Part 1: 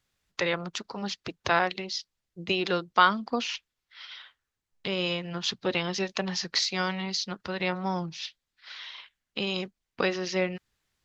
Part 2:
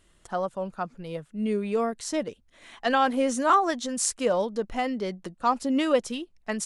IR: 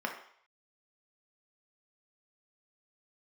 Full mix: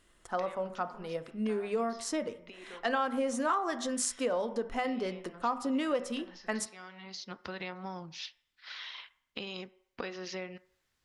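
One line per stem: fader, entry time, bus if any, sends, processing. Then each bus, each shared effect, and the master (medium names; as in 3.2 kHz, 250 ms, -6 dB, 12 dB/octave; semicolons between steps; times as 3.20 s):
-2.0 dB, 0.00 s, send -16.5 dB, compression 4:1, threshold -37 dBFS, peak gain reduction 19 dB; auto duck -17 dB, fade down 0.75 s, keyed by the second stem
-4.5 dB, 0.00 s, send -9.5 dB, hum notches 50/100/150/200/250 Hz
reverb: on, RT60 0.60 s, pre-delay 3 ms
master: compression 3:1, threshold -29 dBFS, peak gain reduction 10 dB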